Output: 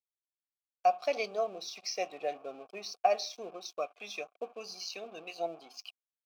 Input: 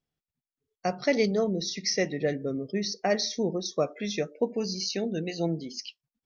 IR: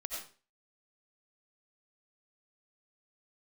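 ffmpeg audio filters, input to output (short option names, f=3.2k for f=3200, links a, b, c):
-filter_complex "[0:a]asettb=1/sr,asplit=3[a][b][c];[a]atrim=end=3.344[d];[b]atrim=start=3.34:end=5.36,asetpts=PTS-STARTPTS,afade=t=in:d=0.004:c=qsin,afade=t=out:st=2.016:d=0.004:c=qsin,equalizer=f=800:t=o:w=0.81:g=-10.5[e];[c]atrim=start=5.356[f];[d][e]acrossfade=d=0.004:c1=hsin:c2=qsin[g];[g][f]acrossfade=d=0.004:c1=qsin:c2=hsin,aeval=exprs='sgn(val(0))*max(abs(val(0))-0.00422,0)':c=same,asplit=3[h][i][j];[h]bandpass=f=730:t=q:w=8,volume=0dB[k];[i]bandpass=f=1.09k:t=q:w=8,volume=-6dB[l];[j]bandpass=f=2.44k:t=q:w=8,volume=-9dB[m];[k][l][m]amix=inputs=3:normalize=0,aemphasis=mode=production:type=riaa,volume=8dB"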